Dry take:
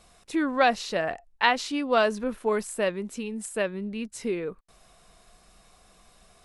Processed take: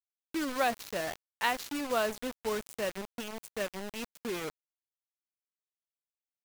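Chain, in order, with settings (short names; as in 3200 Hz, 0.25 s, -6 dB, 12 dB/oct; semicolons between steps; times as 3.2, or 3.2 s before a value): bit-crush 5-bit; gain -8 dB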